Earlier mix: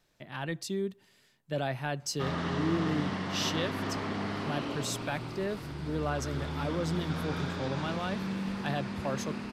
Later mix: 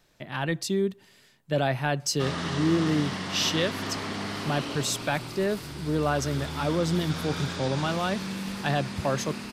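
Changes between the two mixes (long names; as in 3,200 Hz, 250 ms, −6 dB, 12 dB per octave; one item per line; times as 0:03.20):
speech +7.0 dB
background: remove low-pass filter 1,700 Hz 6 dB per octave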